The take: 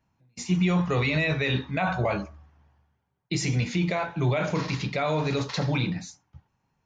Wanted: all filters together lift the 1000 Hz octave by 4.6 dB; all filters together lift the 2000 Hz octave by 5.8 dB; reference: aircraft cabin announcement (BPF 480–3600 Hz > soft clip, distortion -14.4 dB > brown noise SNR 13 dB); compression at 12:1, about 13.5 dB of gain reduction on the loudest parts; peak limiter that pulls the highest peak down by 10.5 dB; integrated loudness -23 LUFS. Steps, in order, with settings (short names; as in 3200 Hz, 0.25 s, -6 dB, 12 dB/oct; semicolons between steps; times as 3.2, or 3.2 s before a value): bell 1000 Hz +5 dB; bell 2000 Hz +6.5 dB; compressor 12:1, threshold -32 dBFS; limiter -29 dBFS; BPF 480–3600 Hz; soft clip -37 dBFS; brown noise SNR 13 dB; gain +20.5 dB